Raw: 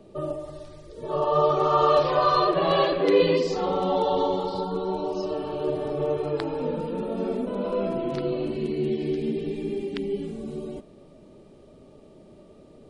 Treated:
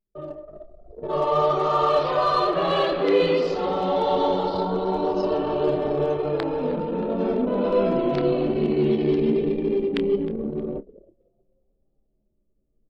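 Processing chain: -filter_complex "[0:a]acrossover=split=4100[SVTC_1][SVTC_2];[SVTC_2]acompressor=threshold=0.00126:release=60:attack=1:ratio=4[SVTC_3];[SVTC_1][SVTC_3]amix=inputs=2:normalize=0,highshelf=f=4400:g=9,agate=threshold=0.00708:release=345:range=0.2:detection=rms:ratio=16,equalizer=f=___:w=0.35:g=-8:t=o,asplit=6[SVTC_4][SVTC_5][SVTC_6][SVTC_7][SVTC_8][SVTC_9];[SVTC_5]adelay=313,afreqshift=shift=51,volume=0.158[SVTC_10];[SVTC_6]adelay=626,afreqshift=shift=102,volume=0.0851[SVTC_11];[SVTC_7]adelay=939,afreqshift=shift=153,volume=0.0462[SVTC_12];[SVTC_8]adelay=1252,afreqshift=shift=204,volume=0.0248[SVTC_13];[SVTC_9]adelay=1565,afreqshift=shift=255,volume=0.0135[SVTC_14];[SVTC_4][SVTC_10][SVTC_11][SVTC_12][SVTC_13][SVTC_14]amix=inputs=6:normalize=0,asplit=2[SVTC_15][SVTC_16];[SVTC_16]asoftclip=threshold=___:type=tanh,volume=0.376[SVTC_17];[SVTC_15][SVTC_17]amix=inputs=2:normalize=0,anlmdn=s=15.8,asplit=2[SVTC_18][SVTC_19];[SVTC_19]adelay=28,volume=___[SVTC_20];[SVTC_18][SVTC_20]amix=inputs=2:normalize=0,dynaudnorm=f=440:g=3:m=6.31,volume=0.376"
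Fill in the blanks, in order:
120, 0.0501, 0.251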